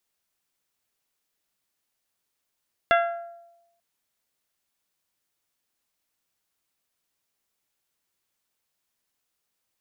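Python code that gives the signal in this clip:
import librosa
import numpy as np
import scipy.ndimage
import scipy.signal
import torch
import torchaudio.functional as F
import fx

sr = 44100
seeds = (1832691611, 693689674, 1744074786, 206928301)

y = fx.strike_glass(sr, length_s=0.89, level_db=-16.0, body='bell', hz=684.0, decay_s=0.95, tilt_db=3, modes=6)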